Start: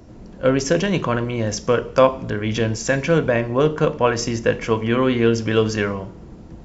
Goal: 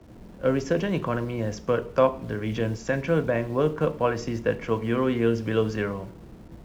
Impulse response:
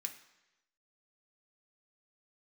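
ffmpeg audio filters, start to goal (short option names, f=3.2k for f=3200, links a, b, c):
-filter_complex "[0:a]aemphasis=mode=reproduction:type=75fm,acrossover=split=160|800|2500[a][b][c][d];[a]acrusher=bits=7:mix=0:aa=0.000001[e];[e][b][c][d]amix=inputs=4:normalize=0,volume=-6.5dB"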